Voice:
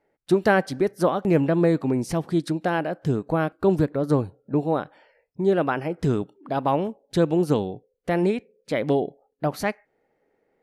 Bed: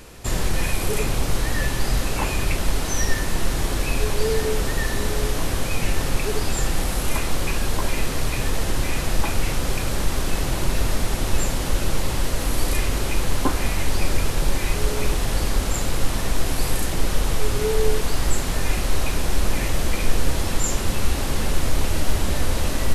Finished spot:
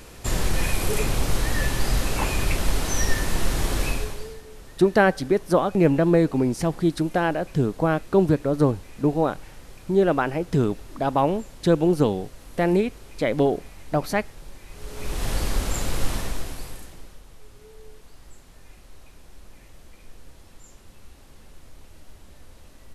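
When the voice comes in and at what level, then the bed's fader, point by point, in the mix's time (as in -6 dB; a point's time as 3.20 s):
4.50 s, +1.5 dB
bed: 3.87 s -1 dB
4.42 s -21.5 dB
14.67 s -21.5 dB
15.26 s -3 dB
16.14 s -3 dB
17.23 s -26.5 dB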